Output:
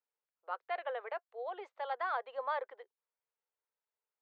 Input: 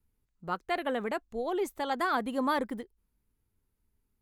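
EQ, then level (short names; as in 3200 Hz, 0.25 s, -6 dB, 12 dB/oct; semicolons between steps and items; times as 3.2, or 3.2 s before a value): steep high-pass 480 Hz 48 dB/oct; steep low-pass 7800 Hz; air absorption 360 m; -4.0 dB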